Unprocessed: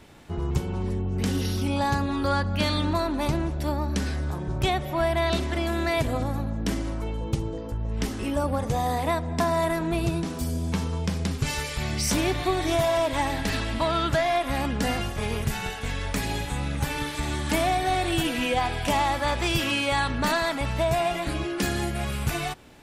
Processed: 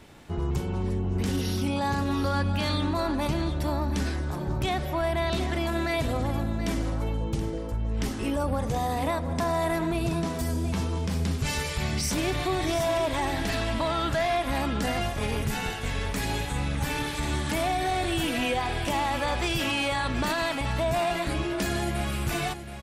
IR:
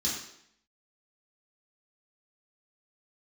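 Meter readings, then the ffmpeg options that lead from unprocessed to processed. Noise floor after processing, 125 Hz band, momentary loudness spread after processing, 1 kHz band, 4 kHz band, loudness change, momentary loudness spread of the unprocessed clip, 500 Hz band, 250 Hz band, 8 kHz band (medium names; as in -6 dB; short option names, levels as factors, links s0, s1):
-33 dBFS, -1.0 dB, 4 LU, -2.0 dB, -1.5 dB, -1.5 dB, 6 LU, -2.0 dB, -1.0 dB, -1.5 dB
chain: -filter_complex "[0:a]alimiter=limit=0.112:level=0:latency=1:release=25,asplit=2[s0][s1];[s1]aecho=0:1:726:0.299[s2];[s0][s2]amix=inputs=2:normalize=0"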